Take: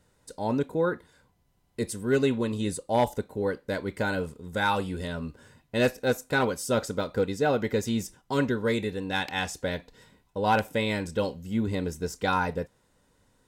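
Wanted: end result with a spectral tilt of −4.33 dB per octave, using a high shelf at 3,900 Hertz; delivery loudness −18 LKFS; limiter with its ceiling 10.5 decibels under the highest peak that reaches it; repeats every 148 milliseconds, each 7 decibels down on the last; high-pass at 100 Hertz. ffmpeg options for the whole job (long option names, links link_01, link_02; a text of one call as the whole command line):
ffmpeg -i in.wav -af "highpass=100,highshelf=frequency=3900:gain=4.5,alimiter=limit=-22dB:level=0:latency=1,aecho=1:1:148|296|444|592|740:0.447|0.201|0.0905|0.0407|0.0183,volume=14dB" out.wav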